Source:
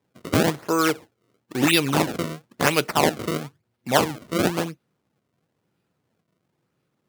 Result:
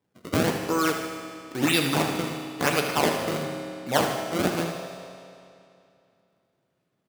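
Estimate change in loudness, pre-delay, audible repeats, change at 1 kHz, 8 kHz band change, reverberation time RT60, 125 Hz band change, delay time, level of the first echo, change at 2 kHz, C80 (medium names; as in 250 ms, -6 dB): -3.0 dB, 8 ms, 2, -2.5 dB, -3.0 dB, 2.6 s, -3.0 dB, 77 ms, -9.0 dB, -2.5 dB, 5.0 dB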